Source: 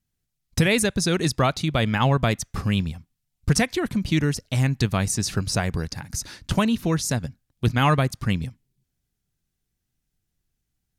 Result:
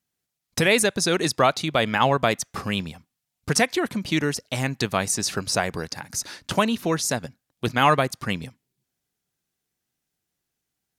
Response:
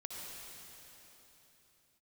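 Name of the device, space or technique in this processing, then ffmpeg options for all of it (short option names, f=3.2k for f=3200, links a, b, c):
filter by subtraction: -filter_complex "[0:a]asplit=2[a][b];[b]lowpass=580,volume=-1[c];[a][c]amix=inputs=2:normalize=0,volume=2dB"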